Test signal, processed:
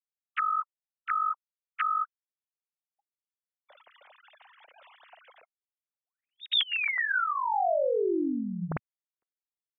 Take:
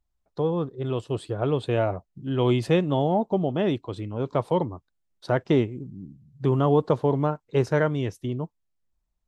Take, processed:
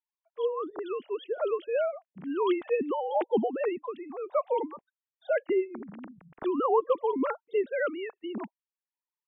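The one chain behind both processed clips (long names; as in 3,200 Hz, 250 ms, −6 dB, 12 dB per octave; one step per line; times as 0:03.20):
three sine waves on the formant tracks
harmonic and percussive parts rebalanced harmonic −7 dB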